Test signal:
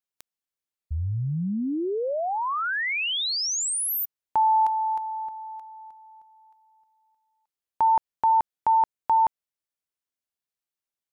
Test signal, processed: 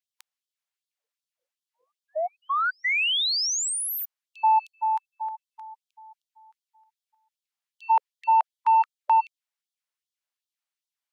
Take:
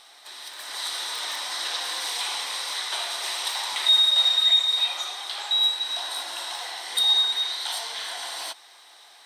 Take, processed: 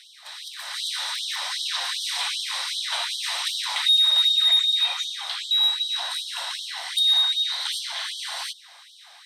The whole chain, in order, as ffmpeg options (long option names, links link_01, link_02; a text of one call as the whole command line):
ffmpeg -i in.wav -filter_complex "[0:a]asplit=2[link_01][link_02];[link_02]highpass=frequency=720:poles=1,volume=8dB,asoftclip=type=tanh:threshold=-10.5dB[link_03];[link_01][link_03]amix=inputs=2:normalize=0,lowpass=frequency=4900:poles=1,volume=-6dB,afftfilt=real='re*gte(b*sr/1024,470*pow(3100/470,0.5+0.5*sin(2*PI*2.6*pts/sr)))':imag='im*gte(b*sr/1024,470*pow(3100/470,0.5+0.5*sin(2*PI*2.6*pts/sr)))':win_size=1024:overlap=0.75" out.wav